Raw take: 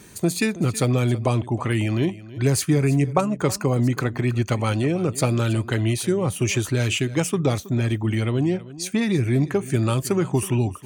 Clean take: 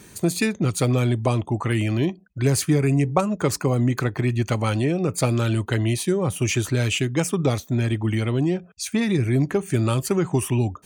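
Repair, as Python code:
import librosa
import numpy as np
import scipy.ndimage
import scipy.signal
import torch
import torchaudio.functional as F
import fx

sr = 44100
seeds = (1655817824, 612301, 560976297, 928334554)

y = fx.fix_echo_inverse(x, sr, delay_ms=322, level_db=-17.5)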